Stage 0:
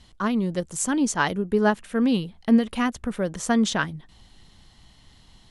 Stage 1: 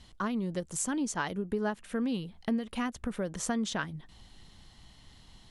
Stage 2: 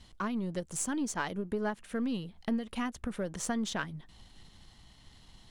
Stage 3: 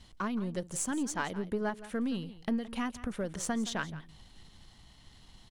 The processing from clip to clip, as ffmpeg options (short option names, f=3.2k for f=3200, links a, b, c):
-af "acompressor=threshold=-29dB:ratio=3,volume=-2dB"
-af "aeval=exprs='if(lt(val(0),0),0.708*val(0),val(0))':c=same"
-af "aecho=1:1:169:0.158"